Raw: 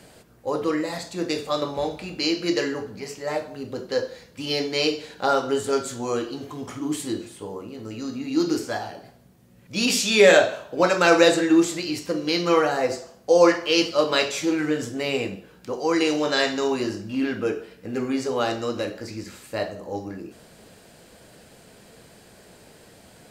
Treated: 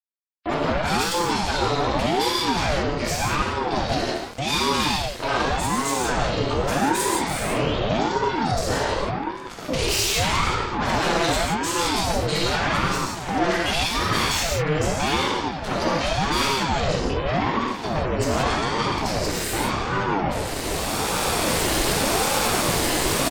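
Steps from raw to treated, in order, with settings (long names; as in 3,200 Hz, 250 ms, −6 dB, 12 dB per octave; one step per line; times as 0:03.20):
camcorder AGC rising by 13 dB per second
noise gate with hold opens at −32 dBFS
comb filter 1 ms, depth 31%
on a send: delay that swaps between a low-pass and a high-pass 755 ms, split 930 Hz, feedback 63%, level −13.5 dB
on the sum: fuzz pedal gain 33 dB, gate −35 dBFS
sound drawn into the spectrogram rise, 0:06.31–0:07.79, 420–3,600 Hz −28 dBFS
floating-point word with a short mantissa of 2 bits
gate on every frequency bin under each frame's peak −30 dB strong
reverb whose tail is shaped and stops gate 200 ms flat, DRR −2.5 dB
ring modulator whose carrier an LFO sweeps 420 Hz, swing 65%, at 0.85 Hz
level −8 dB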